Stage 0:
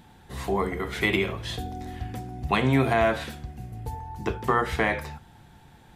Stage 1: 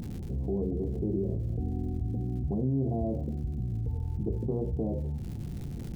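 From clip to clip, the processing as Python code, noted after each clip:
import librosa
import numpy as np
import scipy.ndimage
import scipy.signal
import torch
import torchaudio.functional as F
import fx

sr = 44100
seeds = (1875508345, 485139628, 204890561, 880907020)

y = scipy.ndimage.gaussian_filter1d(x, 20.0, mode='constant')
y = fx.dmg_crackle(y, sr, seeds[0], per_s=240.0, level_db=-58.0)
y = fx.env_flatten(y, sr, amount_pct=70)
y = y * 10.0 ** (-5.5 / 20.0)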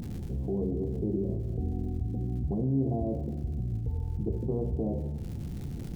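y = fx.rev_schroeder(x, sr, rt60_s=1.4, comb_ms=26, drr_db=9.5)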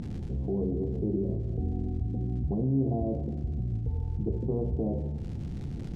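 y = fx.air_absorb(x, sr, metres=76.0)
y = y * 10.0 ** (1.0 / 20.0)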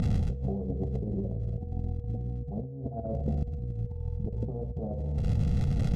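y = x + 0.72 * np.pad(x, (int(1.5 * sr / 1000.0), 0))[:len(x)]
y = fx.over_compress(y, sr, threshold_db=-32.0, ratio=-0.5)
y = y + 10.0 ** (-50.0 / 20.0) * np.sin(2.0 * np.pi * 480.0 * np.arange(len(y)) / sr)
y = y * 10.0 ** (2.5 / 20.0)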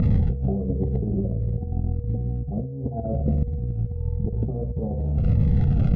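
y = scipy.signal.sosfilt(scipy.signal.butter(2, 2100.0, 'lowpass', fs=sr, output='sos'), x)
y = fx.notch_cascade(y, sr, direction='falling', hz=1.5)
y = y * 10.0 ** (7.5 / 20.0)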